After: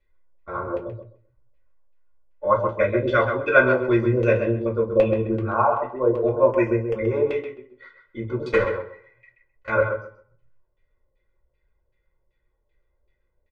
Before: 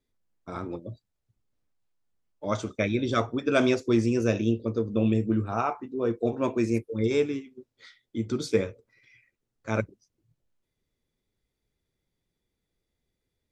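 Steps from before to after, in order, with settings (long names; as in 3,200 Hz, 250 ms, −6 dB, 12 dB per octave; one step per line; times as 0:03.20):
0:08.51–0:09.70: one scale factor per block 3 bits
comb filter 2 ms, depth 72%
auto-filter low-pass saw down 2.6 Hz 550–2,600 Hz
0:06.47–0:07.14: Butterworth band-reject 4,000 Hz, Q 2.4
tape delay 131 ms, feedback 21%, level −6 dB, low-pass 3,200 Hz
convolution reverb RT60 0.25 s, pre-delay 3 ms, DRR 0 dB
level −1 dB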